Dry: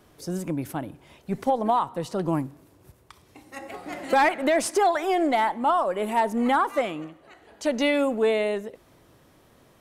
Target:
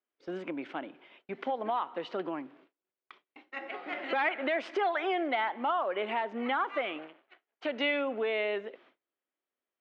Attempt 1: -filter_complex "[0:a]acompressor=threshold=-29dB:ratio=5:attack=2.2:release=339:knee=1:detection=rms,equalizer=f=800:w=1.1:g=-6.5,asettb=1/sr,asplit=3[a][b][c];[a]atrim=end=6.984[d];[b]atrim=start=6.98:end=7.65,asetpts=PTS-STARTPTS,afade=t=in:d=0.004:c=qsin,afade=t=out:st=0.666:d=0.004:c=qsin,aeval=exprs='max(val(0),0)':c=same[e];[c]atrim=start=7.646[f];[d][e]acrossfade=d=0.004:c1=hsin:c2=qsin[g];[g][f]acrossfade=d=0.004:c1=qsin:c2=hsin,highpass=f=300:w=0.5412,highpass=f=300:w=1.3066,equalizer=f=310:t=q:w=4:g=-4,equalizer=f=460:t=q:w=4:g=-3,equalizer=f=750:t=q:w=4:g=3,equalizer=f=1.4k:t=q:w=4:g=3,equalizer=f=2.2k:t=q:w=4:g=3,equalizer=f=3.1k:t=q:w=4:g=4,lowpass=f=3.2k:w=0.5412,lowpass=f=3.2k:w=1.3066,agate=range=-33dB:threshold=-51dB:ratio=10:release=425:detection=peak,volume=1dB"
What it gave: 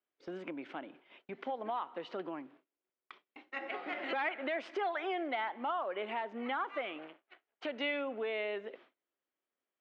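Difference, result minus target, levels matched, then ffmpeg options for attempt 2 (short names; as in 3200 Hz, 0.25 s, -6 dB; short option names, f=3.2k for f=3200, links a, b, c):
compressor: peak gain reduction +5.5 dB
-filter_complex "[0:a]acompressor=threshold=-22dB:ratio=5:attack=2.2:release=339:knee=1:detection=rms,equalizer=f=800:w=1.1:g=-6.5,asettb=1/sr,asplit=3[a][b][c];[a]atrim=end=6.984[d];[b]atrim=start=6.98:end=7.65,asetpts=PTS-STARTPTS,afade=t=in:d=0.004:c=qsin,afade=t=out:st=0.666:d=0.004:c=qsin,aeval=exprs='max(val(0),0)':c=same[e];[c]atrim=start=7.646[f];[d][e]acrossfade=d=0.004:c1=hsin:c2=qsin[g];[g][f]acrossfade=d=0.004:c1=qsin:c2=hsin,highpass=f=300:w=0.5412,highpass=f=300:w=1.3066,equalizer=f=310:t=q:w=4:g=-4,equalizer=f=460:t=q:w=4:g=-3,equalizer=f=750:t=q:w=4:g=3,equalizer=f=1.4k:t=q:w=4:g=3,equalizer=f=2.2k:t=q:w=4:g=3,equalizer=f=3.1k:t=q:w=4:g=4,lowpass=f=3.2k:w=0.5412,lowpass=f=3.2k:w=1.3066,agate=range=-33dB:threshold=-51dB:ratio=10:release=425:detection=peak,volume=1dB"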